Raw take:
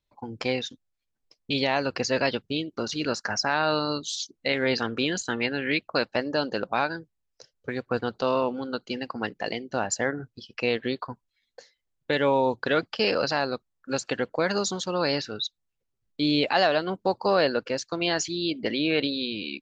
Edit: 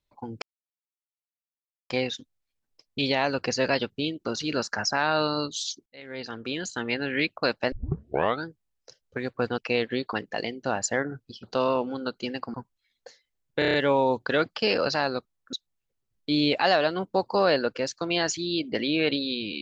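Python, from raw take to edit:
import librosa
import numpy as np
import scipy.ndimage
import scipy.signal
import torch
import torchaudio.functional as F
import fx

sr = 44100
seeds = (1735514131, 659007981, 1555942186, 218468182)

y = fx.edit(x, sr, fx.insert_silence(at_s=0.42, length_s=1.48),
    fx.fade_in_span(start_s=4.38, length_s=1.25),
    fx.tape_start(start_s=6.24, length_s=0.73),
    fx.swap(start_s=8.1, length_s=1.11, other_s=10.51, other_length_s=0.55),
    fx.stutter(start_s=12.11, slice_s=0.03, count=6),
    fx.cut(start_s=13.9, length_s=1.54), tone=tone)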